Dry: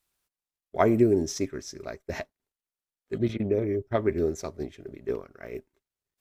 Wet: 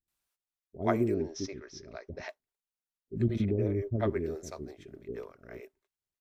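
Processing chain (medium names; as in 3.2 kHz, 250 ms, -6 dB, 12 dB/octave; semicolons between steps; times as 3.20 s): 1.06–2.21 s: steep low-pass 5.9 kHz 48 dB/octave; 3.16–4.10 s: bass shelf 250 Hz +10 dB; bands offset in time lows, highs 80 ms, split 420 Hz; trim -5.5 dB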